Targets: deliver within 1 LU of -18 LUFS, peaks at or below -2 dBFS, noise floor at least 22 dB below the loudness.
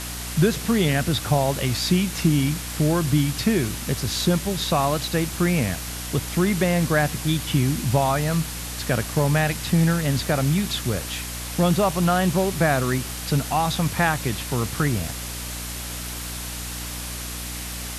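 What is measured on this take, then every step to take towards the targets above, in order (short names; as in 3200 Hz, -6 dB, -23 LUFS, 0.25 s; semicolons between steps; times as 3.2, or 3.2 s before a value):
hum 60 Hz; harmonics up to 300 Hz; hum level -33 dBFS; noise floor -32 dBFS; noise floor target -45 dBFS; loudness -23.0 LUFS; peak -7.5 dBFS; loudness target -18.0 LUFS
-> notches 60/120/180/240/300 Hz; noise print and reduce 13 dB; gain +5 dB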